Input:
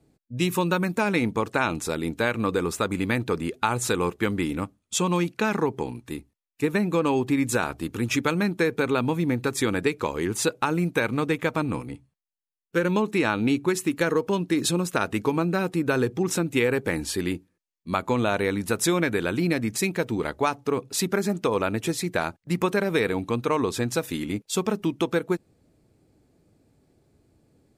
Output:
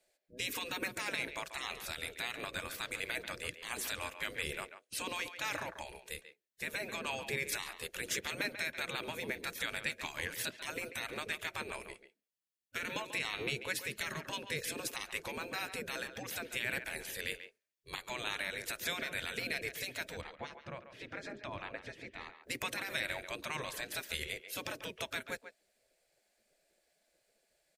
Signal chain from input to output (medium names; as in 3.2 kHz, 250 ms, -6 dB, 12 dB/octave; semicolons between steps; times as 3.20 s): high-order bell 1 kHz -12 dB 1 oct; peak limiter -17.5 dBFS, peak gain reduction 8.5 dB; spectral gate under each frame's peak -15 dB weak; 20.21–22.43 s: tape spacing loss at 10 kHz 29 dB; speakerphone echo 140 ms, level -10 dB